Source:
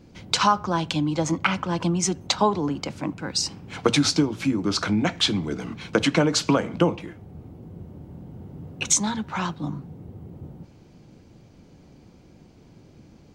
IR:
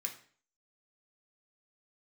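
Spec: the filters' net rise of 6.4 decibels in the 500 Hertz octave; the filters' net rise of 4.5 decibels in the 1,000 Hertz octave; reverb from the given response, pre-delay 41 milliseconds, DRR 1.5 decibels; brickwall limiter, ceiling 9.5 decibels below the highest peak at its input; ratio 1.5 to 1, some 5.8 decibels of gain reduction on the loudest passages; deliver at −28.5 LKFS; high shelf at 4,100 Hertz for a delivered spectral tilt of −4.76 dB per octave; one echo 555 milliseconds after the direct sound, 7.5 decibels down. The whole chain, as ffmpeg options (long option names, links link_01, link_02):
-filter_complex "[0:a]equalizer=frequency=500:width_type=o:gain=7,equalizer=frequency=1000:width_type=o:gain=4,highshelf=frequency=4100:gain=-8.5,acompressor=threshold=-27dB:ratio=1.5,alimiter=limit=-16.5dB:level=0:latency=1,aecho=1:1:555:0.422,asplit=2[link_01][link_02];[1:a]atrim=start_sample=2205,adelay=41[link_03];[link_02][link_03]afir=irnorm=-1:irlink=0,volume=-1dB[link_04];[link_01][link_04]amix=inputs=2:normalize=0,volume=-1.5dB"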